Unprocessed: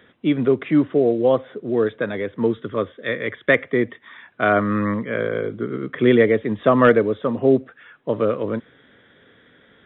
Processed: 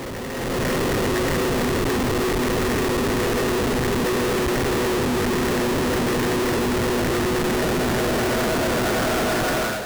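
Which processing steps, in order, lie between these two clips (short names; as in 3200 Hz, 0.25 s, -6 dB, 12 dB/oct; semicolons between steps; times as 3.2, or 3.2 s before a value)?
LPF 3300 Hz 12 dB/oct; thinning echo 0.38 s, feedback 16%, high-pass 220 Hz, level -18 dB; Paulstretch 39×, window 0.50 s, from 4.03; Schmitt trigger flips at -38.5 dBFS; AGC gain up to 10 dB; gain +6.5 dB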